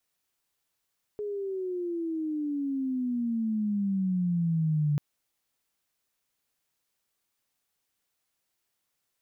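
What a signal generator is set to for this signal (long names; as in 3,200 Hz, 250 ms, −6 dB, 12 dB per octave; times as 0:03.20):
pitch glide with a swell sine, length 3.79 s, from 421 Hz, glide −18.5 semitones, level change +8 dB, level −22.5 dB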